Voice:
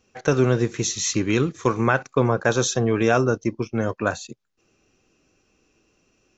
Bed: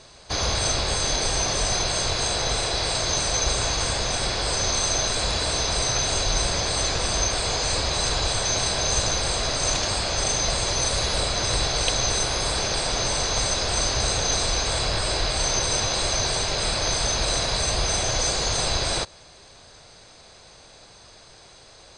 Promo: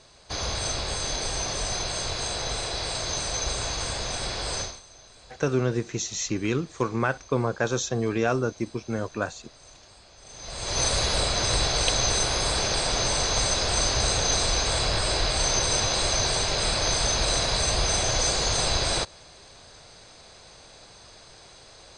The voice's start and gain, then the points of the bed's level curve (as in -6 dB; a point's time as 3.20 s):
5.15 s, -5.5 dB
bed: 4.61 s -5.5 dB
4.83 s -27 dB
10.20 s -27 dB
10.80 s -0.5 dB